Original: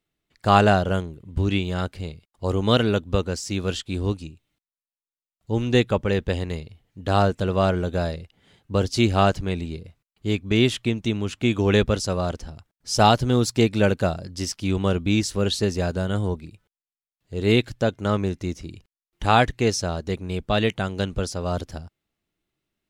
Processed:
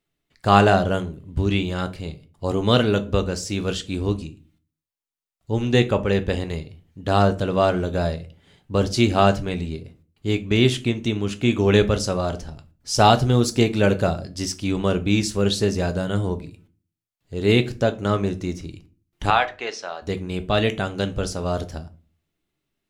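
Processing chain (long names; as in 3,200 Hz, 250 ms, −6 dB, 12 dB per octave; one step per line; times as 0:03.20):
0:19.30–0:20.02: band-pass filter 770–3,300 Hz
on a send: convolution reverb RT60 0.35 s, pre-delay 7 ms, DRR 9 dB
on the sum: level +1 dB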